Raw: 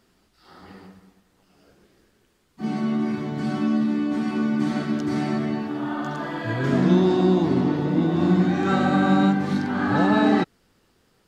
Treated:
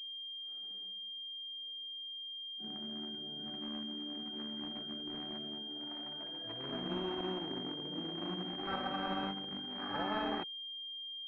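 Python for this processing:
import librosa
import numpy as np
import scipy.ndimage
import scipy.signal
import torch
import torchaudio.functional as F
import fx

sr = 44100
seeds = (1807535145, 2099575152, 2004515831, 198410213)

y = fx.wiener(x, sr, points=41)
y = np.diff(y, prepend=0.0)
y = fx.pwm(y, sr, carrier_hz=3200.0)
y = y * 10.0 ** (7.0 / 20.0)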